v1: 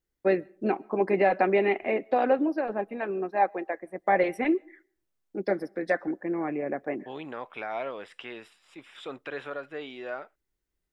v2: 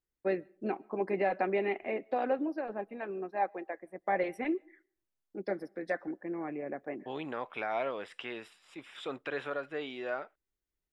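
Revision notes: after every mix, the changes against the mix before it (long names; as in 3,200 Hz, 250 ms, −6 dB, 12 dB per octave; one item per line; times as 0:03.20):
first voice −7.5 dB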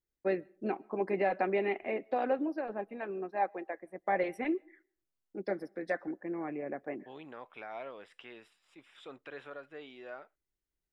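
second voice −9.5 dB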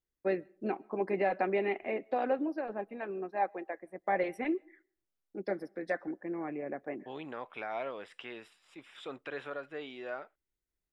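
second voice +5.5 dB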